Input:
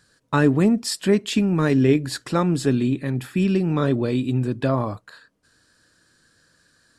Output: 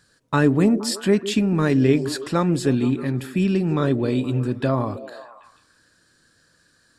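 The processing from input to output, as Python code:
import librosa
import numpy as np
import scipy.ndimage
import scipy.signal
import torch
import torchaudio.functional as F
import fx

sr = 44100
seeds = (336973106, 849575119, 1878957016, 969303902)

y = fx.echo_stepped(x, sr, ms=157, hz=320.0, octaves=0.7, feedback_pct=70, wet_db=-9.5)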